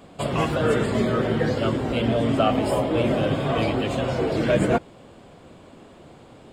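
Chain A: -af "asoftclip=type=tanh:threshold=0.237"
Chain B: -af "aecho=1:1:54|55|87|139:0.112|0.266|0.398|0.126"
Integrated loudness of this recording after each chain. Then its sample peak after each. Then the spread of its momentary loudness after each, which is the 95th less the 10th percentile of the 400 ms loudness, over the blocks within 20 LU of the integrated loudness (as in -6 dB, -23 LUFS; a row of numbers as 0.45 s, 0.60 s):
-24.0 LUFS, -22.0 LUFS; -13.0 dBFS, -7.5 dBFS; 3 LU, 4 LU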